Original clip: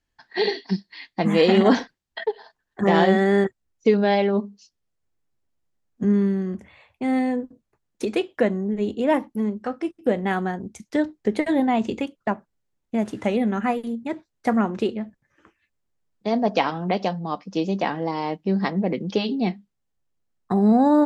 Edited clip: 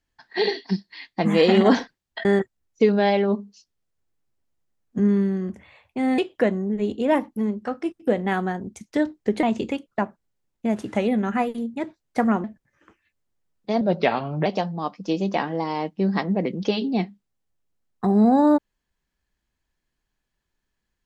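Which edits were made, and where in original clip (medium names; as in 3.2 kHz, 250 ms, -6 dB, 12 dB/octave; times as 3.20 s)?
2.25–3.30 s: delete
7.23–8.17 s: delete
11.42–11.72 s: delete
14.73–15.01 s: delete
16.38–16.93 s: speed 85%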